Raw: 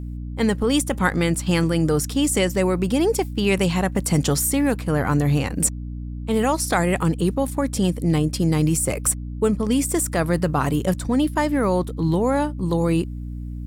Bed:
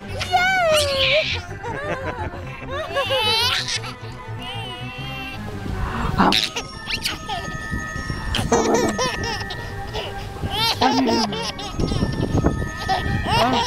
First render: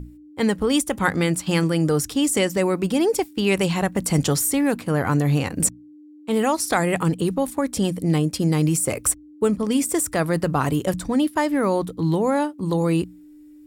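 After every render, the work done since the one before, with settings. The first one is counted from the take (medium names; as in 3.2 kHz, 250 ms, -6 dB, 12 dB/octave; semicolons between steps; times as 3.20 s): hum notches 60/120/180/240 Hz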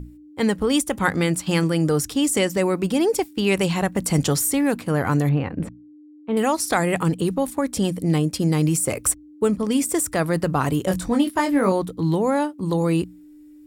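5.29–6.37 s: distance through air 490 m; 10.88–11.72 s: doubling 21 ms -4 dB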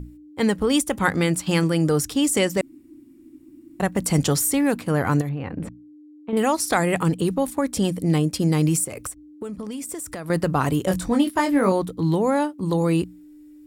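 2.61–3.80 s: room tone; 5.21–6.33 s: compression, threshold -24 dBFS; 8.84–10.30 s: compression 12:1, threshold -28 dBFS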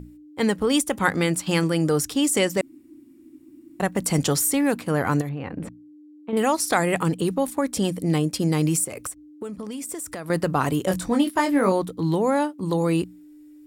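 bass shelf 110 Hz -8.5 dB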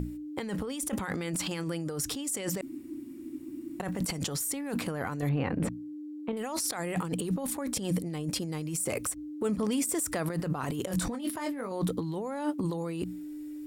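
compressor with a negative ratio -31 dBFS, ratio -1; peak limiter -21.5 dBFS, peak gain reduction 10.5 dB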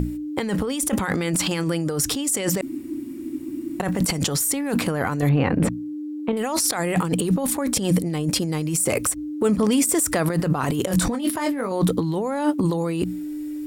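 trim +10 dB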